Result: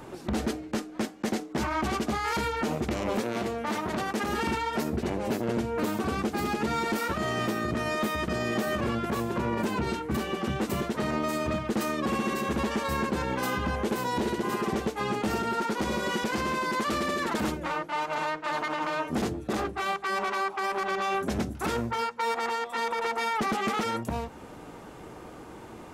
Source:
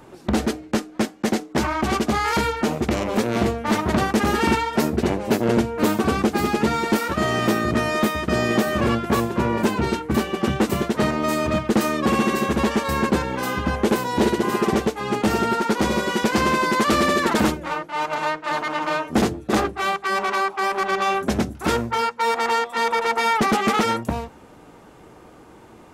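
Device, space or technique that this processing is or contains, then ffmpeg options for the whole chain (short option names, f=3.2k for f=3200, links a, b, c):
stacked limiters: -filter_complex "[0:a]alimiter=limit=-13dB:level=0:latency=1:release=249,alimiter=limit=-16.5dB:level=0:latency=1:release=45,alimiter=limit=-22dB:level=0:latency=1:release=262,asettb=1/sr,asplit=3[a][b][c];[a]atrim=end=3.204[d];[b]atrim=start=3.2:end=4.29,asetpts=PTS-STARTPTS,afade=t=in:d=0.004:c=qsin,afade=t=out:st=1.086:d=0.004:c=qsin,highpass=f=210:p=1[e];[c]atrim=start=4.286[f];[d][e]acrossfade=d=0.004:c1=hsin:c2=qsin[g];[g][f]acrossfade=d=0.004:c1=qsin:c2=hsin,volume=2dB"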